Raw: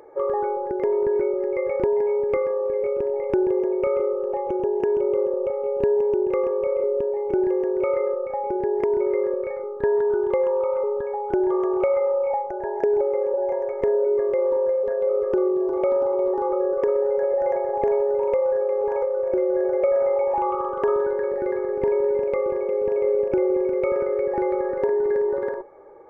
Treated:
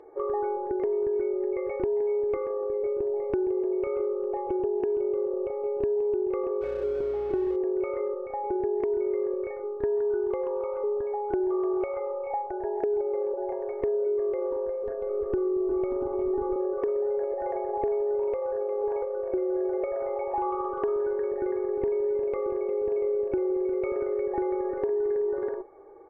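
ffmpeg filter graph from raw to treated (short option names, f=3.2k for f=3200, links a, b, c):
-filter_complex "[0:a]asettb=1/sr,asplit=3[a][b][c];[a]atrim=end=2.634[d];[b]atrim=start=2.63:end=3.33,asetpts=PTS-STARTPTS,afade=t=in:d=0.004:c=qsin,afade=t=out:st=0.696:d=0.004:c=qsin,lowpass=1.8k,acompressor=mode=upward:threshold=-26dB:ratio=2.5:attack=3.2:release=140:knee=2.83:detection=peak[e];[c]atrim=start=3.326[f];[d][e]acrossfade=d=0.004:c1=hsin:c2=qsin[g];[g][f]acrossfade=d=0.004:c1=qsin:c2=hsin,asettb=1/sr,asplit=3[h][i][j];[h]atrim=end=6.614[k];[i]atrim=start=6.61:end=7.56,asetpts=PTS-STARTPTS,afade=t=in:d=0.004:c=qsin,afade=t=out:st=0.946:d=0.004:c=qsin,aeval=exprs='val(0)+0.00631*(sin(2*PI*60*n/s)+sin(2*PI*2*60*n/s)/2+sin(2*PI*3*60*n/s)/3+sin(2*PI*4*60*n/s)/4+sin(2*PI*5*60*n/s)/5)':c=same,aeval=exprs='sgn(val(0))*max(abs(val(0))-0.0119,0)':c=same[l];[j]atrim=start=7.556[m];[k][l]acrossfade=d=0.004:c1=hsin:c2=qsin[n];[n][m]acrossfade=d=0.004:c1=qsin:c2=hsin,asettb=1/sr,asplit=3[o][p][q];[o]atrim=end=14.444[r];[p]atrim=start=14.44:end=16.56,asetpts=PTS-STARTPTS,afade=t=in:d=0.004:c=qsin,afade=t=out:st=2.116:d=0.004:c=qsin,asubboost=boost=10:cutoff=240,aecho=1:1:378:0.237,atrim=end_sample=93492[s];[q]atrim=start=16.556[t];[r][s]acrossfade=d=0.004:c1=hsin:c2=qsin[u];[u][t]acrossfade=d=0.004:c1=qsin:c2=hsin,lowpass=f=1.7k:p=1,aecho=1:1:2.7:0.54,acompressor=threshold=-20dB:ratio=6,volume=-4dB"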